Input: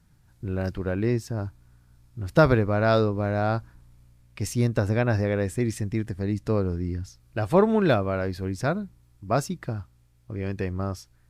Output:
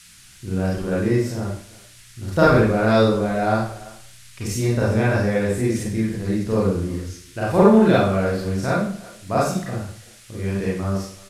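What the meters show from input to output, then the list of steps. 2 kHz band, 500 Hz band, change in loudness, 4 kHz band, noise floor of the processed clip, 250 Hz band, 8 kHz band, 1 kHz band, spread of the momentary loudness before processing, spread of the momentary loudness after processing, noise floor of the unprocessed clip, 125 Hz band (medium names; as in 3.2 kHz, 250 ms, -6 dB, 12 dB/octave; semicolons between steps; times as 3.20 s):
+5.5 dB, +5.0 dB, +5.0 dB, +6.5 dB, -47 dBFS, +6.5 dB, +7.0 dB, +5.5 dB, 13 LU, 16 LU, -60 dBFS, +3.0 dB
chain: speakerphone echo 340 ms, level -20 dB; Schroeder reverb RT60 0.53 s, combs from 32 ms, DRR -7 dB; band noise 1.4–11 kHz -46 dBFS; trim -2.5 dB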